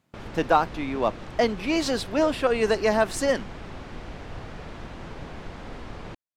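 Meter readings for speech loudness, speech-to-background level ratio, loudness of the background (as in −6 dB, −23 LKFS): −24.5 LKFS, 15.5 dB, −40.0 LKFS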